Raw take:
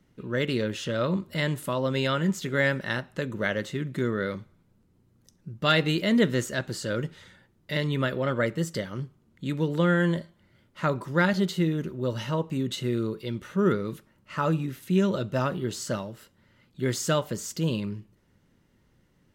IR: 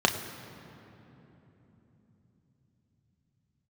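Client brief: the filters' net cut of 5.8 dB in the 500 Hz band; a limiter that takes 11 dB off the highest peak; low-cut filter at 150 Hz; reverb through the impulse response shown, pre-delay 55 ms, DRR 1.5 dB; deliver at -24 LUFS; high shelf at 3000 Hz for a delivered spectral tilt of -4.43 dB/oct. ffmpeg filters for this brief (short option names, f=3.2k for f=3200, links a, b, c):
-filter_complex "[0:a]highpass=150,equalizer=f=500:t=o:g=-7.5,highshelf=f=3k:g=7.5,alimiter=limit=-17dB:level=0:latency=1,asplit=2[a][b];[1:a]atrim=start_sample=2205,adelay=55[c];[b][c]afir=irnorm=-1:irlink=0,volume=-16dB[d];[a][d]amix=inputs=2:normalize=0,volume=4.5dB"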